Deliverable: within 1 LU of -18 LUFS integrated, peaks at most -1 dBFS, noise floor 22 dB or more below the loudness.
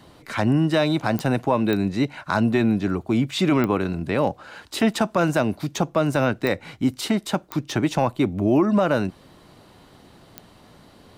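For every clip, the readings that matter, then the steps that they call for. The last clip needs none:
clicks found 6; loudness -22.5 LUFS; peak level -8.5 dBFS; loudness target -18.0 LUFS
-> de-click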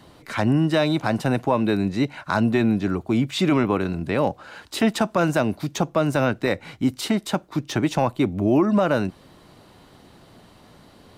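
clicks found 0; loudness -22.5 LUFS; peak level -8.5 dBFS; loudness target -18.0 LUFS
-> trim +4.5 dB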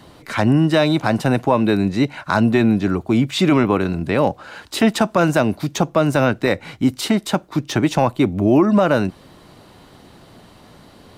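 loudness -18.0 LUFS; peak level -4.0 dBFS; noise floor -47 dBFS

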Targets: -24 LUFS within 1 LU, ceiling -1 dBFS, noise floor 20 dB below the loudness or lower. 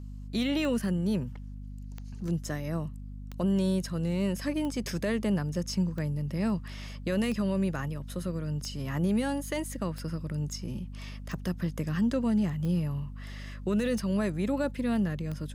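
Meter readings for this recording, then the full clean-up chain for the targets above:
clicks found 12; hum 50 Hz; highest harmonic 250 Hz; hum level -38 dBFS; loudness -31.0 LUFS; peak level -18.5 dBFS; loudness target -24.0 LUFS
-> de-click; hum notches 50/100/150/200/250 Hz; trim +7 dB

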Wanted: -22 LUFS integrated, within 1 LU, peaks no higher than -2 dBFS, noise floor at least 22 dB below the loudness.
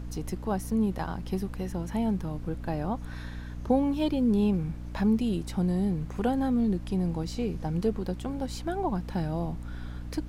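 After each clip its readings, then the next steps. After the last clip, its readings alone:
hum 60 Hz; highest harmonic 300 Hz; hum level -36 dBFS; noise floor -39 dBFS; noise floor target -52 dBFS; loudness -29.5 LUFS; peak level -12.0 dBFS; loudness target -22.0 LUFS
-> de-hum 60 Hz, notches 5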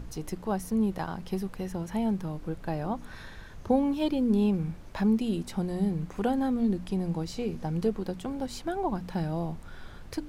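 hum not found; noise floor -45 dBFS; noise floor target -53 dBFS
-> noise print and reduce 8 dB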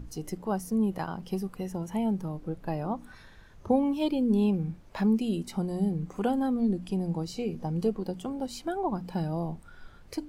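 noise floor -52 dBFS; noise floor target -53 dBFS
-> noise print and reduce 6 dB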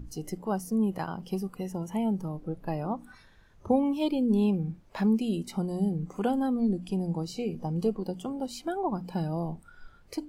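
noise floor -56 dBFS; loudness -30.5 LUFS; peak level -13.0 dBFS; loudness target -22.0 LUFS
-> trim +8.5 dB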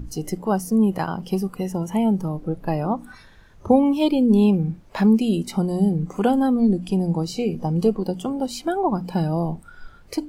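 loudness -22.0 LUFS; peak level -4.5 dBFS; noise floor -48 dBFS

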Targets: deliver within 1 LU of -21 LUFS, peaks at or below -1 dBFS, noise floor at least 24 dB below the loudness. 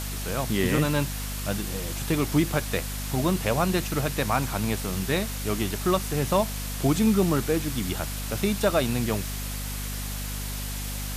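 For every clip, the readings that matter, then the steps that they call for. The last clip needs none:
hum 50 Hz; highest harmonic 250 Hz; hum level -31 dBFS; noise floor -32 dBFS; noise floor target -51 dBFS; loudness -26.5 LUFS; peak level -9.0 dBFS; loudness target -21.0 LUFS
-> de-hum 50 Hz, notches 5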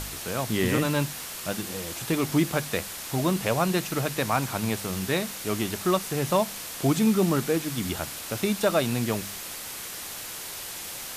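hum not found; noise floor -37 dBFS; noise floor target -51 dBFS
-> noise print and reduce 14 dB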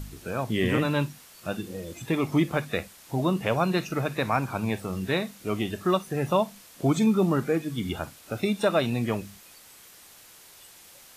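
noise floor -51 dBFS; noise floor target -52 dBFS
-> noise print and reduce 6 dB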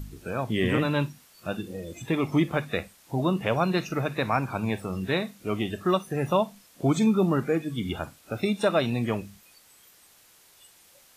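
noise floor -57 dBFS; loudness -27.5 LUFS; peak level -10.0 dBFS; loudness target -21.0 LUFS
-> trim +6.5 dB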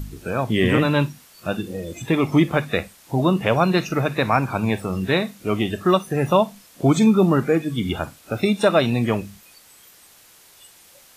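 loudness -21.0 LUFS; peak level -3.5 dBFS; noise floor -51 dBFS

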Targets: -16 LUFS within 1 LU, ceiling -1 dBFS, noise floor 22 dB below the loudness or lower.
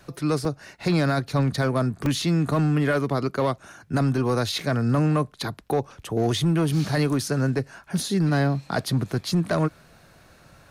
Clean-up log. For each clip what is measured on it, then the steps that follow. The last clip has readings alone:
clipped samples 1.5%; clipping level -15.5 dBFS; dropouts 2; longest dropout 2.1 ms; loudness -24.5 LUFS; peak level -15.5 dBFS; loudness target -16.0 LUFS
-> clip repair -15.5 dBFS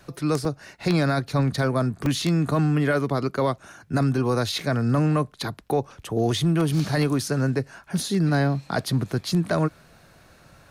clipped samples 0.0%; dropouts 2; longest dropout 2.1 ms
-> interpolate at 0.45/2.06 s, 2.1 ms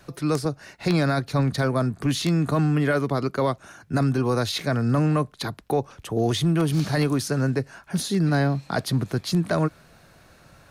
dropouts 0; loudness -24.0 LUFS; peak level -6.5 dBFS; loudness target -16.0 LUFS
-> trim +8 dB; peak limiter -1 dBFS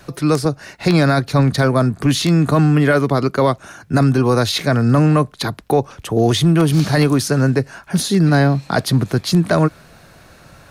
loudness -16.0 LUFS; peak level -1.0 dBFS; noise floor -46 dBFS

